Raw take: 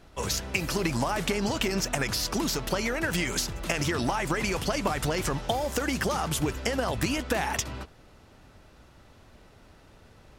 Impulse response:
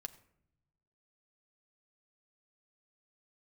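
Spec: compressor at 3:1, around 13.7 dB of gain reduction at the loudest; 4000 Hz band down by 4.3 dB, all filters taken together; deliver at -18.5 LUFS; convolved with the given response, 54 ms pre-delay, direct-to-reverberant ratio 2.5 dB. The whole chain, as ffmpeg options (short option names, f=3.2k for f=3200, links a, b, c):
-filter_complex "[0:a]equalizer=f=4k:t=o:g=-6,acompressor=threshold=-43dB:ratio=3,asplit=2[a][b];[1:a]atrim=start_sample=2205,adelay=54[c];[b][c]afir=irnorm=-1:irlink=0,volume=1dB[d];[a][d]amix=inputs=2:normalize=0,volume=21.5dB"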